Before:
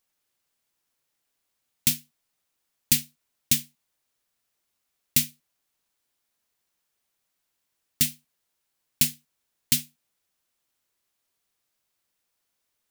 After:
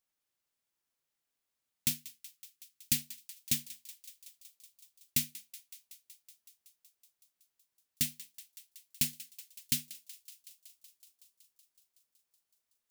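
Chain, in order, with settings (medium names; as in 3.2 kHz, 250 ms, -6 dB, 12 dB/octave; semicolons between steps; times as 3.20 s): 1.95–2.96 s: high-order bell 670 Hz -13.5 dB 1.2 oct; on a send: thinning echo 187 ms, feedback 80%, high-pass 1.1 kHz, level -17.5 dB; on the sum: trim -8.5 dB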